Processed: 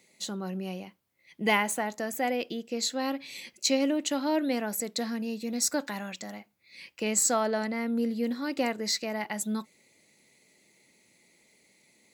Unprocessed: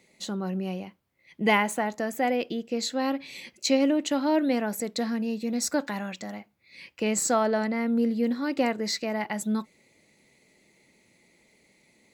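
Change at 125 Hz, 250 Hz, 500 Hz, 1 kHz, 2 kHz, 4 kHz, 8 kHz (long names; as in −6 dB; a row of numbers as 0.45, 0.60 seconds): can't be measured, −4.0 dB, −3.5 dB, −3.0 dB, −2.0 dB, +0.5 dB, +3.0 dB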